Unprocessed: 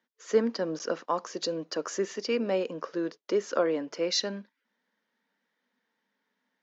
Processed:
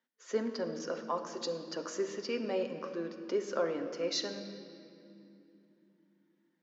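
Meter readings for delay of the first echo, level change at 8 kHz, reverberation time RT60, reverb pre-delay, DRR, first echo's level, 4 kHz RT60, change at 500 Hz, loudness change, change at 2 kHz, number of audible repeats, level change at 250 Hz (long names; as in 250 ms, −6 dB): no echo audible, can't be measured, 2.9 s, 8 ms, 4.5 dB, no echo audible, 2.0 s, −5.5 dB, −6.0 dB, −5.5 dB, no echo audible, −6.0 dB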